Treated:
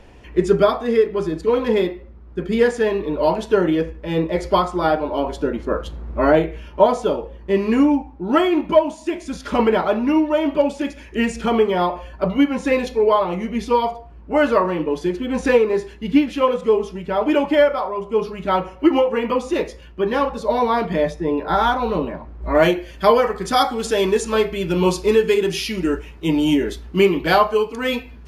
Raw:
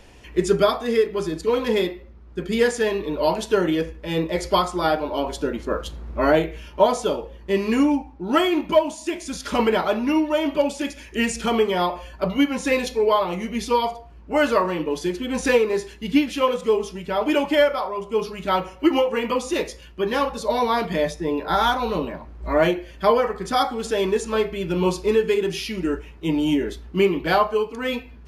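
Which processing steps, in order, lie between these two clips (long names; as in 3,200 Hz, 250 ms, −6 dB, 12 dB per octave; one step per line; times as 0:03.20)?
high-shelf EQ 3,100 Hz −12 dB, from 0:22.55 +2 dB
level +3.5 dB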